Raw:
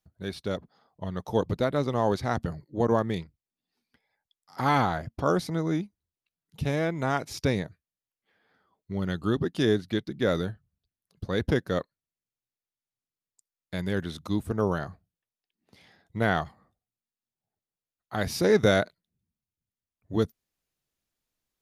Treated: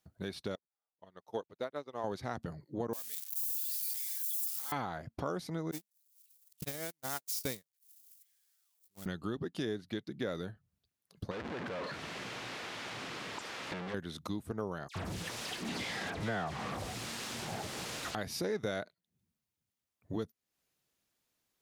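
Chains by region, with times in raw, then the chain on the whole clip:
0:00.55–0:02.04: bass and treble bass −12 dB, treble −2 dB + expander for the loud parts 2.5 to 1, over −47 dBFS
0:02.93–0:04.72: spike at every zero crossing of −19 dBFS + first difference
0:05.71–0:09.06: spike at every zero crossing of −21 dBFS + noise gate −25 dBFS, range −54 dB + high-shelf EQ 3,600 Hz +10.5 dB
0:11.31–0:13.94: sign of each sample alone + low-pass filter 2,900 Hz + low-shelf EQ 110 Hz −11.5 dB
0:14.88–0:18.15: converter with a step at zero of −25.5 dBFS + high-frequency loss of the air 64 metres + all-pass dispersion lows, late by 77 ms, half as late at 2,400 Hz
whole clip: high-pass filter 130 Hz 6 dB per octave; downward compressor 3 to 1, threshold −43 dBFS; level +4 dB

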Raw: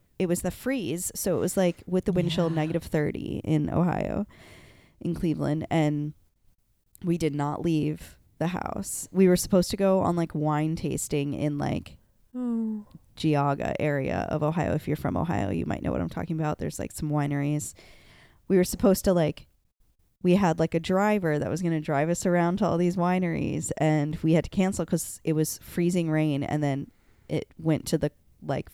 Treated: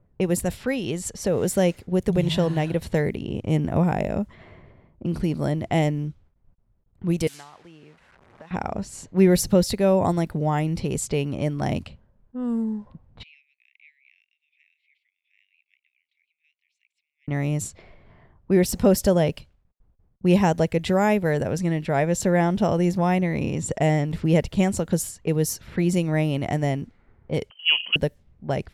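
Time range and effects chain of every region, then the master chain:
0:07.27–0:08.51: linear delta modulator 64 kbit/s, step −36 dBFS + first-order pre-emphasis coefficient 0.97 + multiband upward and downward compressor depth 100%
0:13.23–0:17.28: Butterworth high-pass 2,200 Hz 96 dB per octave + spectral tilt −4.5 dB per octave
0:27.50–0:27.96: mains-hum notches 60/120/180/240/300/360/420/480/540/600 Hz + voice inversion scrambler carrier 3,100 Hz + high-pass filter 290 Hz 24 dB per octave
whole clip: parametric band 300 Hz −6 dB 0.33 octaves; low-pass that shuts in the quiet parts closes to 970 Hz, open at −24.5 dBFS; dynamic equaliser 1,200 Hz, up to −6 dB, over −48 dBFS, Q 3.6; level +4 dB

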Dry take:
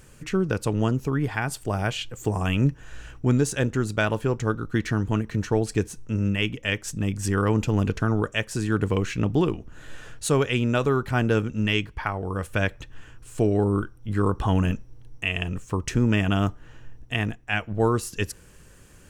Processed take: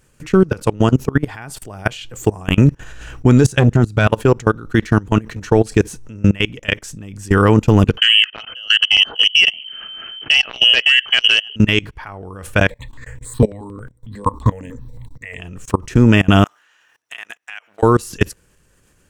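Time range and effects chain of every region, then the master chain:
0:03.44–0:04.07: parametric band 120 Hz +10.5 dB 0.9 octaves + transient designer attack +6 dB, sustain −1 dB + saturating transformer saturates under 420 Hz
0:07.97–0:11.56: voice inversion scrambler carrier 3,100 Hz + saturating transformer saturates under 1,700 Hz
0:12.70–0:15.40: EQ curve with evenly spaced ripples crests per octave 1, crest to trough 14 dB + step-sequenced phaser 11 Hz 340–4,400 Hz
0:16.44–0:17.83: high-pass filter 1,300 Hz + downward compressor 16 to 1, threshold −38 dBFS
whole clip: low-shelf EQ 250 Hz −2 dB; output level in coarse steps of 24 dB; boost into a limiter +16.5 dB; level −1 dB

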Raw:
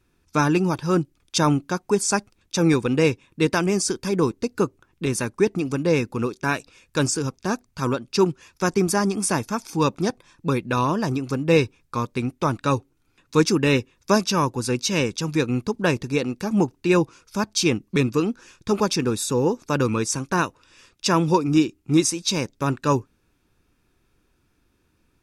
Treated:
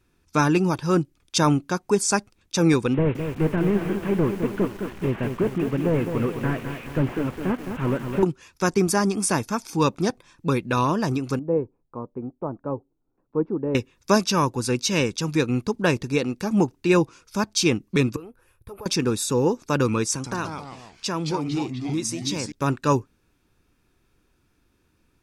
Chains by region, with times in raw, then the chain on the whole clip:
0:02.94–0:08.23: linear delta modulator 16 kbit/s, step −35 dBFS + feedback echo at a low word length 211 ms, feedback 55%, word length 7 bits, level −7 dB
0:11.39–0:13.75: transistor ladder low-pass 950 Hz, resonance 25% + parametric band 86 Hz −7.5 dB 1.5 octaves
0:18.16–0:18.86: downward compressor, threshold −22 dBFS + drawn EQ curve 110 Hz 0 dB, 210 Hz −21 dB, 490 Hz −7 dB, 2,500 Hz −15 dB, 6,600 Hz −27 dB, 11,000 Hz +3 dB
0:20.13–0:22.52: downward compressor 2.5 to 1, threshold −26 dBFS + delay with pitch and tempo change per echo 108 ms, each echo −2 semitones, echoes 3, each echo −6 dB
whole clip: no processing

